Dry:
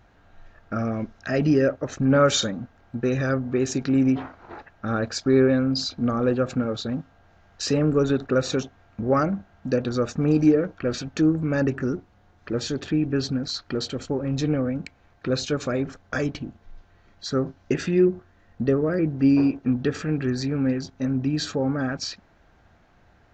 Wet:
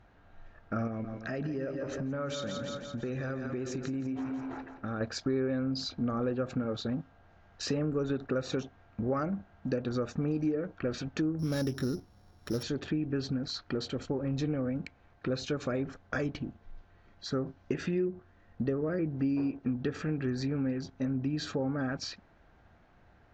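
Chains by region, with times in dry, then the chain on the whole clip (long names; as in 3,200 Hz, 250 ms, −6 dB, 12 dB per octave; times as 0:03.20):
0:00.87–0:05.01: echo with a time of its own for lows and highs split 550 Hz, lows 125 ms, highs 169 ms, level −9 dB + downward compressor, threshold −28 dBFS + one half of a high-frequency compander decoder only
0:11.39–0:12.63: samples sorted by size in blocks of 8 samples + bass and treble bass +3 dB, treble +5 dB
whole clip: high-shelf EQ 6,200 Hz −12 dB; downward compressor 4 to 1, threshold −25 dBFS; level −3.5 dB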